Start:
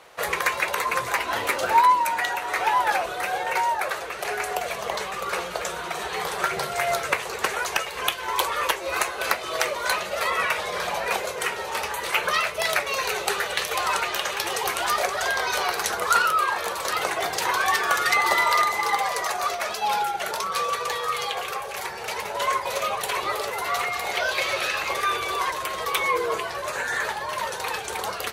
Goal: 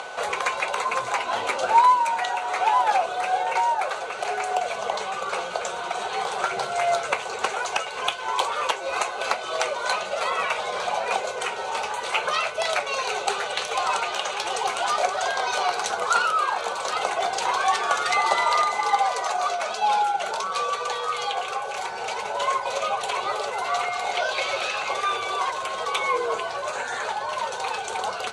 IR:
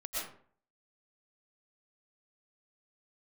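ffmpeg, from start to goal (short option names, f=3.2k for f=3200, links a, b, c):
-af "acrusher=bits=6:mode=log:mix=0:aa=0.000001,acompressor=mode=upward:threshold=-26dB:ratio=2.5,aeval=exprs='val(0)+0.0141*sin(2*PI*1500*n/s)':c=same,highpass=130,equalizer=f=160:t=q:w=4:g=-8,equalizer=f=320:t=q:w=4:g=-7,equalizer=f=760:t=q:w=4:g=6,equalizer=f=1.8k:t=q:w=4:g=-9,equalizer=f=5.2k:t=q:w=4:g=-4,lowpass=f=8.3k:w=0.5412,lowpass=f=8.3k:w=1.3066"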